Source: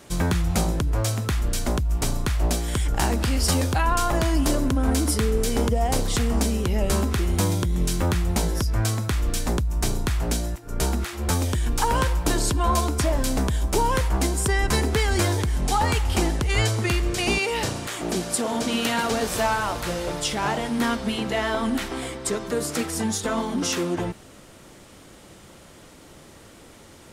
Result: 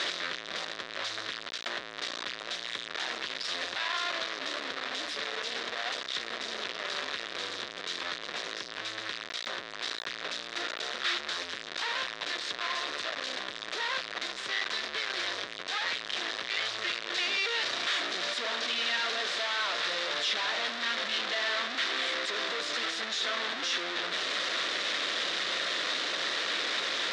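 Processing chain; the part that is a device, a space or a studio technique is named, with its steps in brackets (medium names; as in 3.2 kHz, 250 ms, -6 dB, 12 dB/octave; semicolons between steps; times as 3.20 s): 10.82–11.42 s: bass shelf 100 Hz -2.5 dB; home computer beeper (one-bit comparator; cabinet simulation 680–5100 Hz, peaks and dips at 850 Hz -10 dB, 1.8 kHz +5 dB, 3.7 kHz +8 dB); trim -5.5 dB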